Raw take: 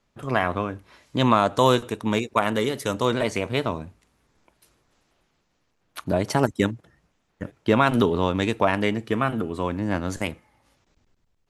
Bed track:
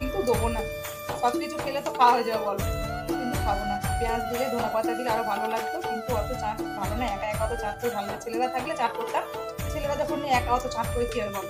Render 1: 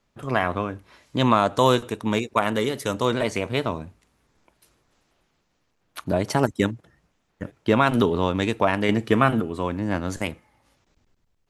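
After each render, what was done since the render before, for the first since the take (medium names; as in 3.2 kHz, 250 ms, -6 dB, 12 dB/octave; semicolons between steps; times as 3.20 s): 8.89–9.40 s: gain +5 dB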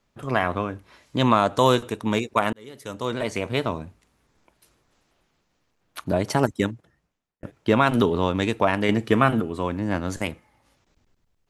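2.53–3.52 s: fade in; 6.46–7.43 s: fade out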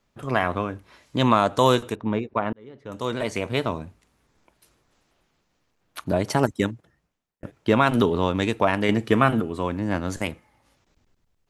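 1.95–2.92 s: tape spacing loss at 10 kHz 38 dB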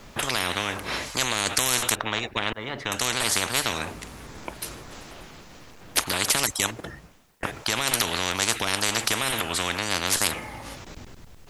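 loudness maximiser +9 dB; spectrum-flattening compressor 10:1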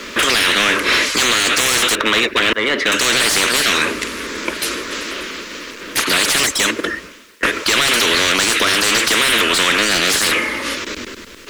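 static phaser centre 320 Hz, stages 4; overdrive pedal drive 32 dB, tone 2.6 kHz, clips at -1.5 dBFS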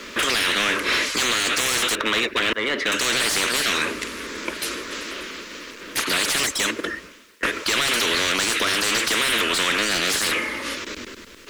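trim -6.5 dB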